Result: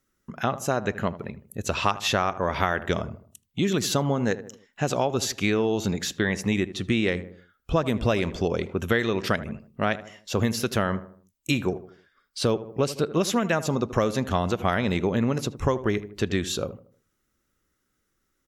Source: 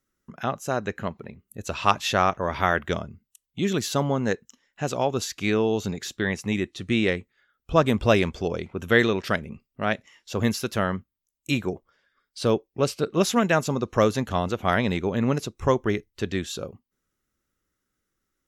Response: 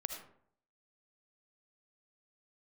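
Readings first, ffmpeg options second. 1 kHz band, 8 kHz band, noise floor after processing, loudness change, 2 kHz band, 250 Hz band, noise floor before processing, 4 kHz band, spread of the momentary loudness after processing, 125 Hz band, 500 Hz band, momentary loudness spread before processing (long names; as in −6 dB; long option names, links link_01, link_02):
−2.0 dB, +2.0 dB, −75 dBFS, −1.0 dB, −1.5 dB, 0.0 dB, −82 dBFS, +1.0 dB, 9 LU, +0.5 dB, −1.0 dB, 12 LU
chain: -filter_complex "[0:a]asplit=2[link_01][link_02];[link_02]adelay=78,lowpass=frequency=1300:poles=1,volume=-15.5dB,asplit=2[link_03][link_04];[link_04]adelay=78,lowpass=frequency=1300:poles=1,volume=0.44,asplit=2[link_05][link_06];[link_06]adelay=78,lowpass=frequency=1300:poles=1,volume=0.44,asplit=2[link_07][link_08];[link_08]adelay=78,lowpass=frequency=1300:poles=1,volume=0.44[link_09];[link_01][link_03][link_05][link_07][link_09]amix=inputs=5:normalize=0,acompressor=threshold=-24dB:ratio=6,volume=4.5dB"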